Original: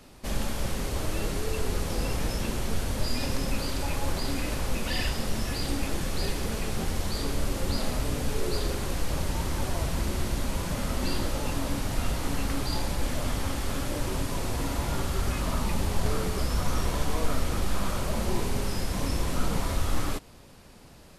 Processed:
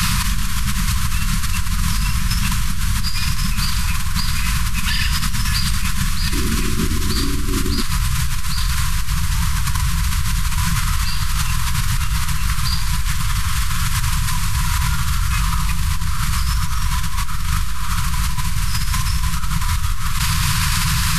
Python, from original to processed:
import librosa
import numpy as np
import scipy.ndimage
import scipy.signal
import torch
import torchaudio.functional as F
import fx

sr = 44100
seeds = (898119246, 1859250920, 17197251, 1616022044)

y = fx.cheby1_bandstop(x, sr, low_hz=fx.steps((0.0, 200.0), (6.32, 380.0), (7.81, 170.0)), high_hz=1000.0, order=5)
y = fx.env_flatten(y, sr, amount_pct=100)